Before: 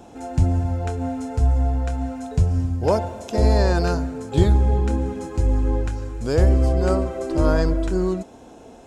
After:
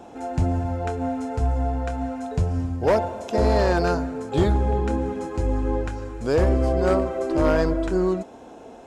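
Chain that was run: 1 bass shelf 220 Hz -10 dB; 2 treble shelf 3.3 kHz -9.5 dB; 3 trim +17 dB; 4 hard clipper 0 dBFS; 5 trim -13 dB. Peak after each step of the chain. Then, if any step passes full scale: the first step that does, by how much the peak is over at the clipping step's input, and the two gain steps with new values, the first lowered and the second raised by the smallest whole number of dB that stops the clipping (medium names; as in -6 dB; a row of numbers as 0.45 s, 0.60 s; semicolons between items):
-9.0 dBFS, -9.5 dBFS, +7.5 dBFS, 0.0 dBFS, -13.0 dBFS; step 3, 7.5 dB; step 3 +9 dB, step 5 -5 dB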